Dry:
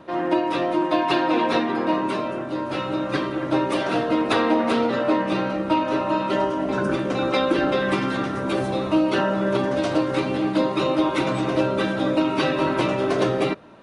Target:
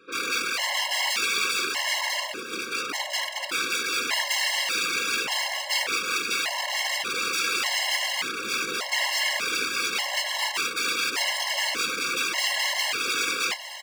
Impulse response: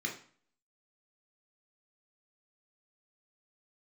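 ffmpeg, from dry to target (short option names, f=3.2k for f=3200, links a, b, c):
-filter_complex "[0:a]aeval=exprs='(mod(8.91*val(0)+1,2)-1)/8.91':c=same,tiltshelf=f=1.1k:g=-9,aecho=1:1:615|1230|1845|2460|3075|3690:0.224|0.125|0.0702|0.0393|0.022|0.0123,asplit=2[a][b];[1:a]atrim=start_sample=2205,asetrate=74970,aresample=44100[c];[b][c]afir=irnorm=-1:irlink=0,volume=-6dB[d];[a][d]amix=inputs=2:normalize=0,afftfilt=real='hypot(re,im)*cos(2*PI*random(0))':imag='hypot(re,im)*sin(2*PI*random(1))':win_size=512:overlap=0.75,acrossover=split=230 7900:gain=0.112 1 0.251[e][f][g];[e][f][g]amix=inputs=3:normalize=0,afftfilt=real='re*gt(sin(2*PI*0.85*pts/sr)*(1-2*mod(floor(b*sr/1024/550),2)),0)':imag='im*gt(sin(2*PI*0.85*pts/sr)*(1-2*mod(floor(b*sr/1024/550),2)),0)':win_size=1024:overlap=0.75,volume=3.5dB"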